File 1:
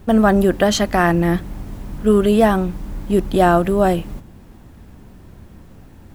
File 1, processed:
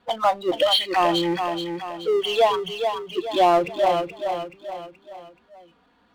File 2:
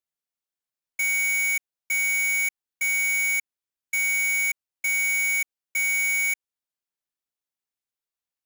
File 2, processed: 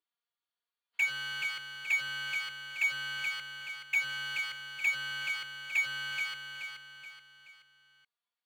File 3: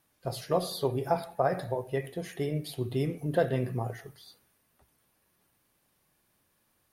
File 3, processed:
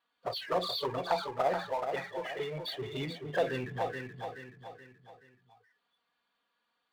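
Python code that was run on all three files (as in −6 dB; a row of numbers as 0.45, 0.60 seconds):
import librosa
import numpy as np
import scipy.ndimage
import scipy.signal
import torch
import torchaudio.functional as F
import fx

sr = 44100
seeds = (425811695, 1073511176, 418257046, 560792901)

y = scipy.signal.sosfilt(scipy.signal.cheby1(6, 6, 4600.0, 'lowpass', fs=sr, output='sos'), x)
y = fx.noise_reduce_blind(y, sr, reduce_db=28)
y = fx.env_flanger(y, sr, rest_ms=4.2, full_db=-25.0)
y = fx.highpass(y, sr, hz=730.0, slope=6)
y = fx.echo_feedback(y, sr, ms=427, feedback_pct=31, wet_db=-9)
y = fx.power_curve(y, sr, exponent=0.7)
y = y * librosa.db_to_amplitude(5.5)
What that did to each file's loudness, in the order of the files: −5.5, −10.5, −3.0 LU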